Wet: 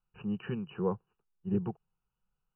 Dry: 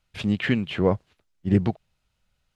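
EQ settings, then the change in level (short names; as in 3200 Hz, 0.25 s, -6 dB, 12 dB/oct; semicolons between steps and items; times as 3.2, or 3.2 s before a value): brick-wall FIR low-pass 3000 Hz; fixed phaser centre 410 Hz, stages 8; -8.0 dB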